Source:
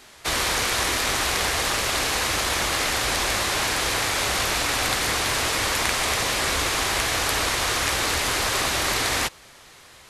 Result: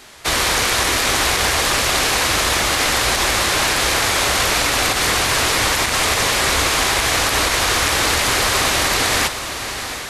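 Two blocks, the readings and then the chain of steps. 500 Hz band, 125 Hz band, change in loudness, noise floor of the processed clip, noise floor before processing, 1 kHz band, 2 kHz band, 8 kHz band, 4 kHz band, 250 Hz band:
+6.5 dB, +6.5 dB, +6.0 dB, -27 dBFS, -49 dBFS, +6.5 dB, +6.5 dB, +6.5 dB, +6.5 dB, +6.5 dB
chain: on a send: echo that smears into a reverb 751 ms, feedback 42%, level -9.5 dB; on the sum: loudness maximiser +10.5 dB; trim -4.5 dB

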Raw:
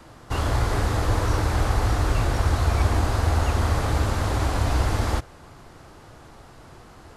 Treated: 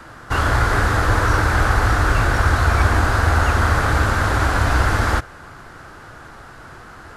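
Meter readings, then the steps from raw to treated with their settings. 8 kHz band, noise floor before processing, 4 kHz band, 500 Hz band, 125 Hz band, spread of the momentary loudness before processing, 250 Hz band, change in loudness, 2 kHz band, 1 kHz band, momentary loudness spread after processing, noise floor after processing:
+4.0 dB, -48 dBFS, +5.0 dB, +4.5 dB, +4.0 dB, 3 LU, +4.0 dB, +6.0 dB, +13.5 dB, +8.5 dB, 2 LU, -40 dBFS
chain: peaking EQ 1.5 kHz +11.5 dB 0.76 oct; trim +4 dB

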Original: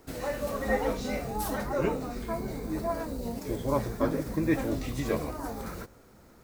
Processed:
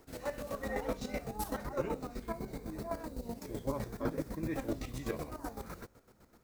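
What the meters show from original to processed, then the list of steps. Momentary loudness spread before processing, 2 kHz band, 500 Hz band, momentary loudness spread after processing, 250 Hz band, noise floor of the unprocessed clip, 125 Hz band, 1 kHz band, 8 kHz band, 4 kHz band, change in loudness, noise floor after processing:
8 LU, -8.5 dB, -8.0 dB, 6 LU, -8.0 dB, -56 dBFS, -7.5 dB, -8.0 dB, -7.0 dB, -7.0 dB, -8.0 dB, -66 dBFS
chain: square tremolo 7.9 Hz, depth 65%, duty 35%; trim -3.5 dB

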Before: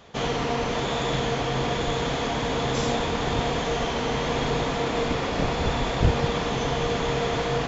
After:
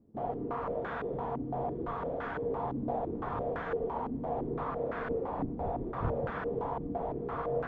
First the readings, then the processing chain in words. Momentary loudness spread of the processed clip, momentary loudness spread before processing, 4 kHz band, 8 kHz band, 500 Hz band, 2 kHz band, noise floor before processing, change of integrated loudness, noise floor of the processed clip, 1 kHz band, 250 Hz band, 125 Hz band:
2 LU, 2 LU, under -30 dB, no reading, -7.5 dB, -14.5 dB, -28 dBFS, -10.0 dB, -39 dBFS, -8.0 dB, -9.0 dB, -12.5 dB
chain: flange 0.33 Hz, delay 9 ms, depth 3.8 ms, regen -55%; step-sequenced low-pass 5.9 Hz 280–1500 Hz; trim -9 dB

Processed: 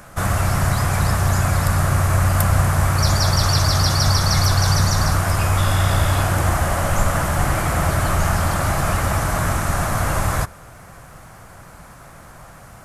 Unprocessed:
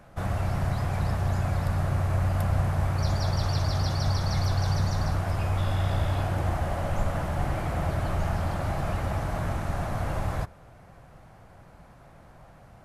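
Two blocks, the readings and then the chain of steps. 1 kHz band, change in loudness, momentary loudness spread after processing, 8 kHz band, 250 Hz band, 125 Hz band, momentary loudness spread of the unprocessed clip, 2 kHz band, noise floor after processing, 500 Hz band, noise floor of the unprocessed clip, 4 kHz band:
+11.0 dB, +9.5 dB, 4 LU, +20.5 dB, +8.0 dB, +8.0 dB, 4 LU, +13.5 dB, -42 dBFS, +8.0 dB, -52 dBFS, +15.0 dB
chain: FFT filter 800 Hz 0 dB, 1.2 kHz +7 dB, 2.7 kHz +4 dB, 4 kHz +5 dB, 7.4 kHz +14 dB; trim +8 dB

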